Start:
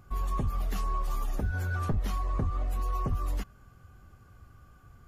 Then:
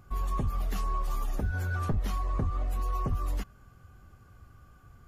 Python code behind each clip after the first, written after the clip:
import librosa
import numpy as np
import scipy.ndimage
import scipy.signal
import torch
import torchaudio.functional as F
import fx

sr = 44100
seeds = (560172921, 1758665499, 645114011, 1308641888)

y = x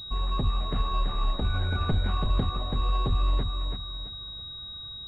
y = fx.echo_feedback(x, sr, ms=332, feedback_pct=35, wet_db=-5)
y = fx.pwm(y, sr, carrier_hz=3800.0)
y = F.gain(torch.from_numpy(y), 2.5).numpy()